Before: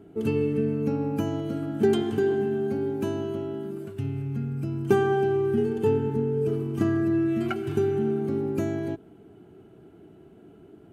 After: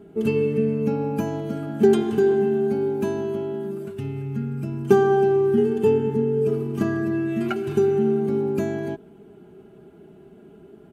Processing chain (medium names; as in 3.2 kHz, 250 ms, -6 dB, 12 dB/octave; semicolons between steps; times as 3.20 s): comb 4.9 ms, depth 55%; trim +2 dB